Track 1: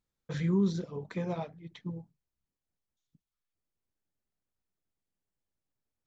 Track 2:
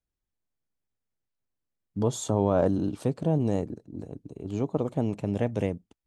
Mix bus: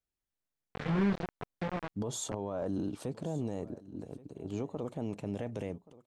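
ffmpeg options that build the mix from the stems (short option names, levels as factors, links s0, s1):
-filter_complex "[0:a]acrusher=bits=4:mix=0:aa=0.000001,lowpass=2200,adelay=450,volume=0.708[s0];[1:a]lowshelf=f=210:g=-5.5,alimiter=limit=0.0668:level=0:latency=1:release=31,volume=0.75,asplit=2[s1][s2];[s2]volume=0.1,aecho=0:1:1127:1[s3];[s0][s1][s3]amix=inputs=3:normalize=0"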